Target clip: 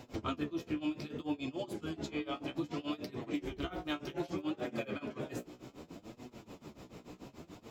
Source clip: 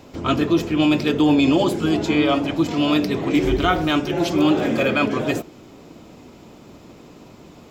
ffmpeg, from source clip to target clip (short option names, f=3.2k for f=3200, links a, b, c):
-af "acompressor=threshold=-28dB:ratio=10,tremolo=f=6.9:d=0.93,flanger=delay=8.1:depth=8.6:regen=31:speed=0.64:shape=sinusoidal"